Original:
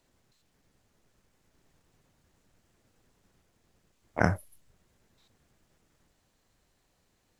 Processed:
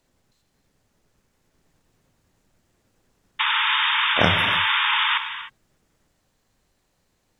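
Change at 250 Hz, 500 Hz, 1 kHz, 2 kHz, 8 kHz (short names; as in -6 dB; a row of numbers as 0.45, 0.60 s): +4.0 dB, +6.5 dB, +16.5 dB, +19.0 dB, n/a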